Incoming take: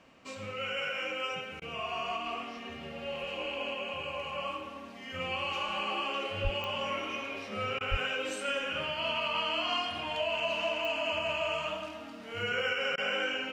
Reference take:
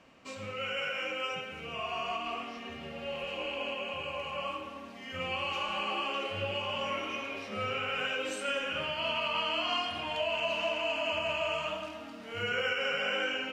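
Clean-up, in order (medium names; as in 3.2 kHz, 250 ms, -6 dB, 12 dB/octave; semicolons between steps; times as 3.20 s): de-click; de-plosive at 6.43/7.90 s; interpolate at 1.60/7.79/12.96 s, 16 ms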